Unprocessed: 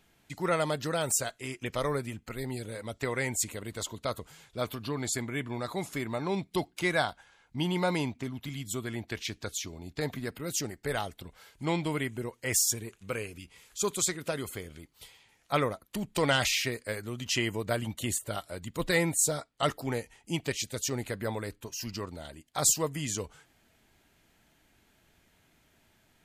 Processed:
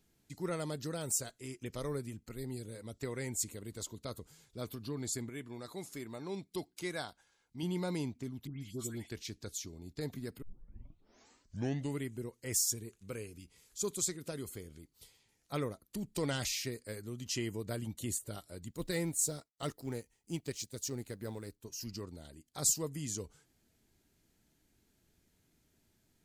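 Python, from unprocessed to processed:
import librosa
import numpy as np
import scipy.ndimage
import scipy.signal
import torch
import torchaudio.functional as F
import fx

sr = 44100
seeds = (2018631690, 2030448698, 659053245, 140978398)

y = fx.low_shelf(x, sr, hz=260.0, db=-8.5, at=(5.29, 7.63))
y = fx.dispersion(y, sr, late='highs', ms=147.0, hz=2100.0, at=(8.47, 9.1))
y = fx.law_mismatch(y, sr, coded='A', at=(18.72, 21.65))
y = fx.edit(y, sr, fx.tape_start(start_s=10.42, length_s=1.6), tone=tone)
y = fx.band_shelf(y, sr, hz=1400.0, db=-8.5, octaves=2.9)
y = y * 10.0 ** (-5.0 / 20.0)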